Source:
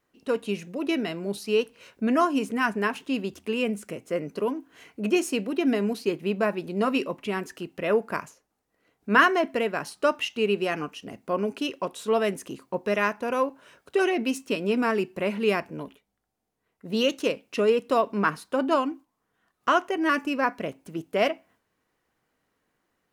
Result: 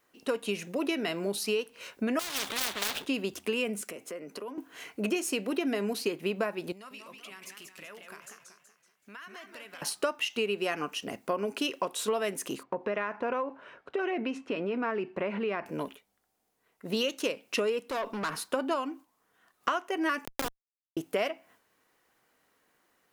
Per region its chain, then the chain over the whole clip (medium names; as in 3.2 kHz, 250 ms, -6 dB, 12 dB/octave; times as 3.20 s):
2.19–3.06 s: median filter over 41 samples + peaking EQ 3.5 kHz +12 dB 0.44 oct + spectrum-flattening compressor 4:1
3.81–4.58 s: high-pass 190 Hz + compression 8:1, threshold -39 dBFS + three bands expanded up and down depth 40%
6.72–9.82 s: amplifier tone stack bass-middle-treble 5-5-5 + compression 10:1, threshold -47 dBFS + modulated delay 189 ms, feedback 44%, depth 215 cents, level -5 dB
12.63–15.66 s: low-pass 2.1 kHz + compression 4:1, threshold -29 dBFS
17.85–18.36 s: compression, threshold -24 dBFS + valve stage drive 31 dB, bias 0.4
20.25–20.97 s: Schmitt trigger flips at -20 dBFS + three bands compressed up and down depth 70%
whole clip: bass shelf 240 Hz -11.5 dB; compression 8:1, threshold -32 dBFS; treble shelf 9.3 kHz +5 dB; trim +5.5 dB